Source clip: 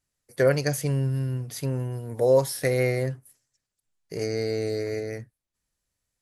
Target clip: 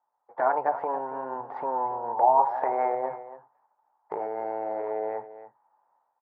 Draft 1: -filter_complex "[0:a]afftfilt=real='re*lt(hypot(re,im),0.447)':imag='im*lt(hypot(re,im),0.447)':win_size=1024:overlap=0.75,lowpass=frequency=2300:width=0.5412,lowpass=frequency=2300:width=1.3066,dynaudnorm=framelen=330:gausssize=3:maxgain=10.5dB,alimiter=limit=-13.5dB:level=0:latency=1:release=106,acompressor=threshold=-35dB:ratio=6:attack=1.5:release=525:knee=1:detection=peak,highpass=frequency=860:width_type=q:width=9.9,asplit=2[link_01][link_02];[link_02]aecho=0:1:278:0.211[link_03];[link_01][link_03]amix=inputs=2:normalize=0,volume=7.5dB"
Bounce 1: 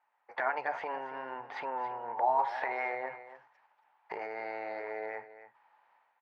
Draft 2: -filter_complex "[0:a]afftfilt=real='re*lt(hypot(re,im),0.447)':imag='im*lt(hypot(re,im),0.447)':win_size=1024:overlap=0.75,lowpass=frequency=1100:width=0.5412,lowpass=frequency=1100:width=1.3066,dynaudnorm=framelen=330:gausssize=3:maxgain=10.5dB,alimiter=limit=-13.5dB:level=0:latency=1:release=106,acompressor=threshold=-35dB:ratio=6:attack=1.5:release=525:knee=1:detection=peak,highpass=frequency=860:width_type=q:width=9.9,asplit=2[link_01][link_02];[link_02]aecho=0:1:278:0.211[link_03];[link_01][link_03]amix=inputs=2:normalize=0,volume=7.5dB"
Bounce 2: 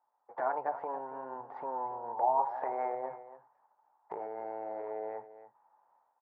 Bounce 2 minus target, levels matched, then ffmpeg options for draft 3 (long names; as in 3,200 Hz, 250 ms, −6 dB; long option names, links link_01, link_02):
downward compressor: peak gain reduction +8.5 dB
-filter_complex "[0:a]afftfilt=real='re*lt(hypot(re,im),0.447)':imag='im*lt(hypot(re,im),0.447)':win_size=1024:overlap=0.75,lowpass=frequency=1100:width=0.5412,lowpass=frequency=1100:width=1.3066,dynaudnorm=framelen=330:gausssize=3:maxgain=10.5dB,alimiter=limit=-13.5dB:level=0:latency=1:release=106,acompressor=threshold=-25dB:ratio=6:attack=1.5:release=525:knee=1:detection=peak,highpass=frequency=860:width_type=q:width=9.9,asplit=2[link_01][link_02];[link_02]aecho=0:1:278:0.211[link_03];[link_01][link_03]amix=inputs=2:normalize=0,volume=7.5dB"